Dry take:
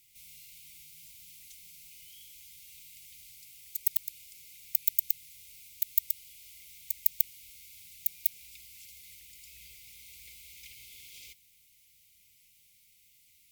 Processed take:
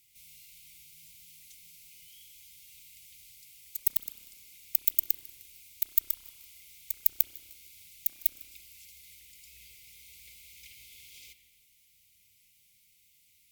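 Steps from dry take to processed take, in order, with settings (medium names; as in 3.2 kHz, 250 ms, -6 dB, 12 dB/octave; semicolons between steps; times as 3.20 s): Chebyshev shaper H 7 -27 dB, 8 -38 dB, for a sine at -3 dBFS; spring tank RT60 1.3 s, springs 31 ms, chirp 20 ms, DRR 9.5 dB; modulated delay 153 ms, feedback 59%, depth 129 cents, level -20.5 dB; trim +1.5 dB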